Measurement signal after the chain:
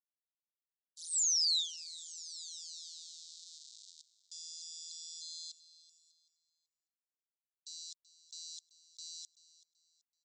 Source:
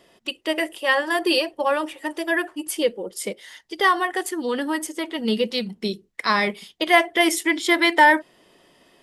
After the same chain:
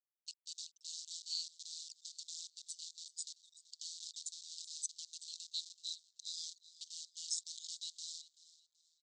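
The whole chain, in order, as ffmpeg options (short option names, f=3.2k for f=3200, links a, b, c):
-filter_complex "[0:a]afftfilt=real='re*gte(hypot(re,im),0.0501)':imag='im*gte(hypot(re,im),0.0501)':win_size=1024:overlap=0.75,areverse,acompressor=threshold=-31dB:ratio=16,areverse,acrusher=bits=7:dc=4:mix=0:aa=0.000001,afreqshift=-170,aecho=1:1:382|764|1146:0.126|0.039|0.0121,asplit=2[a][b];[b]asoftclip=type=hard:threshold=-30dB,volume=-10dB[c];[a][c]amix=inputs=2:normalize=0,aeval=exprs='val(0)*sin(2*PI*82*n/s)':c=same,asuperpass=centerf=5500:order=12:qfactor=1.3,volume=3dB"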